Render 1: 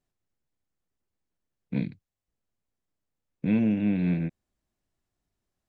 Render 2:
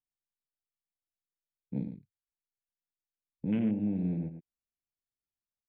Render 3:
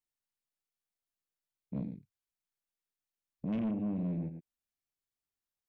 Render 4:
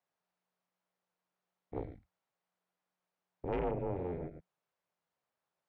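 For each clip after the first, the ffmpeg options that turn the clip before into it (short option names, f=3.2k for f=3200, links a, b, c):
-af "aecho=1:1:110:0.316,afwtdn=0.01,volume=-6dB"
-af "asoftclip=type=tanh:threshold=-29dB"
-af "afreqshift=-180,bandpass=f=710:t=q:w=1:csg=0,volume=15dB"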